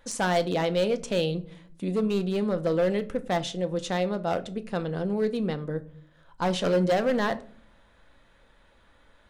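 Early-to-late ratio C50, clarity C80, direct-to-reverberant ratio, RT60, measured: 18.0 dB, 22.5 dB, 10.0 dB, 0.50 s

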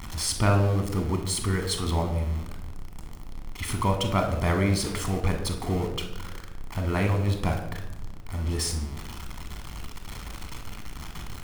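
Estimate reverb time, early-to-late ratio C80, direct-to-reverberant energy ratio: 1.0 s, 10.5 dB, 4.5 dB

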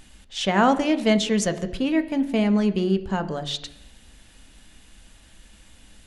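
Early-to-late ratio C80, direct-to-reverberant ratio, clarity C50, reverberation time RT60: 16.0 dB, 8.0 dB, 14.0 dB, 0.80 s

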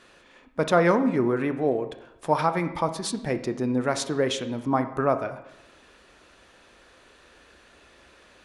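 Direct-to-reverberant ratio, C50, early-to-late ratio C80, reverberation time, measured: 9.0 dB, 11.5 dB, 14.0 dB, 0.85 s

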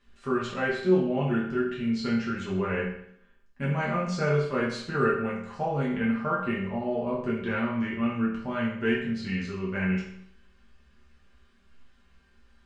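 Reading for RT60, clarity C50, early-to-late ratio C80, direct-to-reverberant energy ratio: 0.65 s, 3.5 dB, 7.0 dB, −7.0 dB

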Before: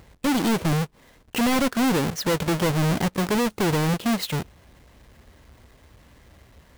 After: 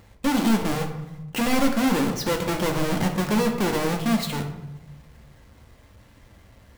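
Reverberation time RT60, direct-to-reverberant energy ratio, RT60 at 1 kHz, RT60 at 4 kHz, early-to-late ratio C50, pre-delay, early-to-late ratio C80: 0.95 s, 2.0 dB, 0.95 s, 0.55 s, 7.0 dB, 3 ms, 10.0 dB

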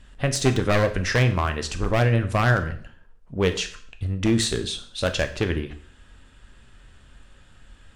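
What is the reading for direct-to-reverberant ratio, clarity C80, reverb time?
7.0 dB, 16.5 dB, 0.50 s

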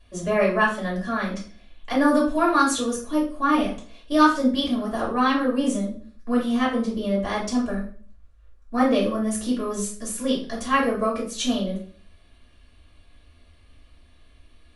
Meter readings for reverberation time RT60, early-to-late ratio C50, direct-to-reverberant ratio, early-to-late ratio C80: 0.45 s, 7.0 dB, −5.5 dB, 12.0 dB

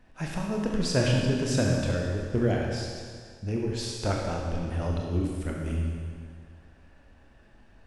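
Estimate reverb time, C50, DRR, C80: 1.9 s, 0.5 dB, −1.5 dB, 2.0 dB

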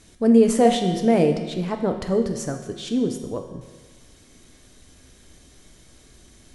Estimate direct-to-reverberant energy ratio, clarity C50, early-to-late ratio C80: 4.5 dB, 7.0 dB, 8.5 dB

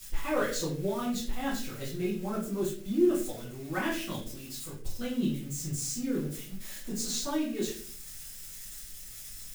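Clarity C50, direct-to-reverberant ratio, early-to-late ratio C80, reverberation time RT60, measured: 5.0 dB, −12.0 dB, 9.5 dB, 0.50 s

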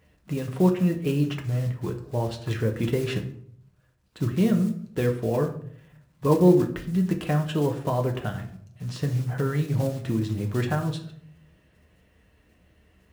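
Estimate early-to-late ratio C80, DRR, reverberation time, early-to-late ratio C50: 14.5 dB, 2.5 dB, 0.60 s, 11.0 dB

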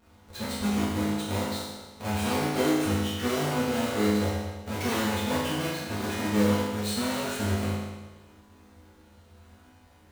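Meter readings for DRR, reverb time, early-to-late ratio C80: −10.0 dB, 1.3 s, 1.5 dB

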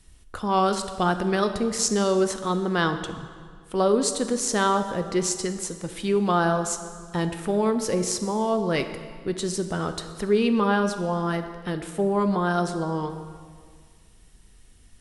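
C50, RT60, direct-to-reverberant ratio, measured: 9.5 dB, 1.9 s, 8.0 dB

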